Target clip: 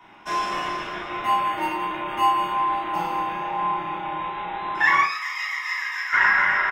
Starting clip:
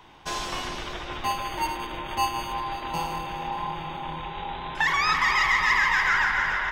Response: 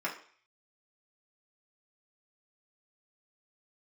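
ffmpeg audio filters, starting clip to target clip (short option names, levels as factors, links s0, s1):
-filter_complex "[0:a]asettb=1/sr,asplit=3[s0][s1][s2];[s0]atrim=end=5.024[s3];[s1]atrim=start=5.02:end=6.13,asetpts=PTS-STARTPTS,afade=t=in:d=0.004:c=qsin,afade=t=out:st=1.106:d=0.004:c=qsin,aderivative[s4];[s2]atrim=start=6.126[s5];[s3][s4]acrossfade=d=0.004:c1=hsin:c2=qsin[s6];[s6][s5]acrossfade=d=0.004:c1=qsin:c2=hsin,asplit=2[s7][s8];[s8]adelay=34,volume=0.562[s9];[s7][s9]amix=inputs=2:normalize=0[s10];[1:a]atrim=start_sample=2205,afade=t=out:st=0.18:d=0.01,atrim=end_sample=8379[s11];[s10][s11]afir=irnorm=-1:irlink=0,volume=0.708"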